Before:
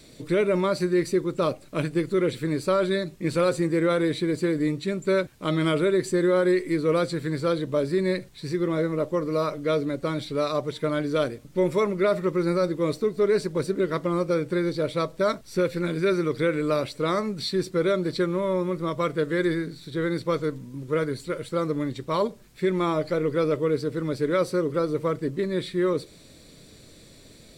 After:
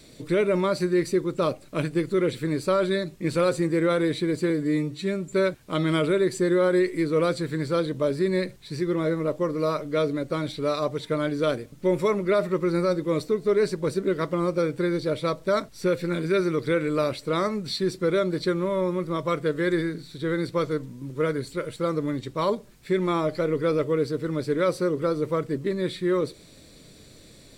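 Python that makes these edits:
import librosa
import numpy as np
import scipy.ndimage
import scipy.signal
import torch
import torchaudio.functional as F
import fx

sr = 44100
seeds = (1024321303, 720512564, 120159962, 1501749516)

y = fx.edit(x, sr, fx.stretch_span(start_s=4.5, length_s=0.55, factor=1.5), tone=tone)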